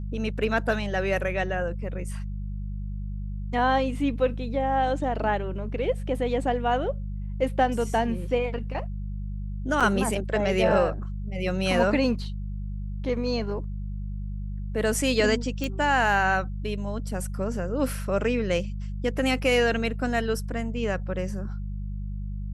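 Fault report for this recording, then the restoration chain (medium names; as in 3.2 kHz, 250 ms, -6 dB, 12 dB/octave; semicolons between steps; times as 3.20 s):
hum 50 Hz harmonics 4 -32 dBFS
9.80–9.81 s: dropout 6.5 ms
15.64 s: pop -15 dBFS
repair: de-click; de-hum 50 Hz, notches 4; interpolate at 9.80 s, 6.5 ms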